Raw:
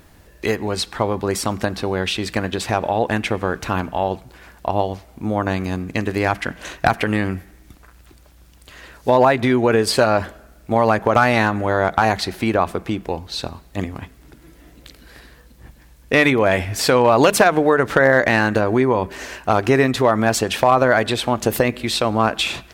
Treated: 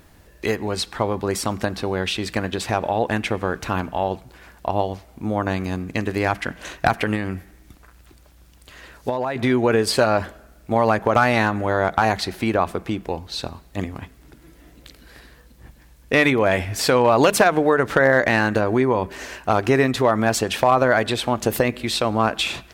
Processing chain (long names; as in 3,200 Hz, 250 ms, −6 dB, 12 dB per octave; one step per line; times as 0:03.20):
0:07.14–0:09.36: downward compressor 12 to 1, threshold −18 dBFS, peak gain reduction 10 dB
level −2 dB